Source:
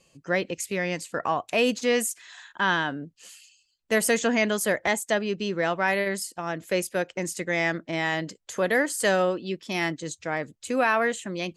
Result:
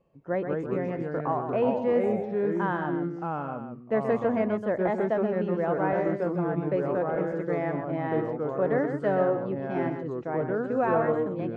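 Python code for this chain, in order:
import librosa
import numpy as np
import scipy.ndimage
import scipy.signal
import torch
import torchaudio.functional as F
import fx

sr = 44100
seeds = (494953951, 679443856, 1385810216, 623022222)

p1 = scipy.signal.sosfilt(scipy.signal.cheby1(2, 1.0, 880.0, 'lowpass', fs=sr, output='sos'), x)
p2 = p1 + fx.echo_single(p1, sr, ms=128, db=-8.0, dry=0)
p3 = fx.echo_pitch(p2, sr, ms=131, semitones=-3, count=2, db_per_echo=-3.0)
y = F.gain(torch.from_numpy(p3), -1.5).numpy()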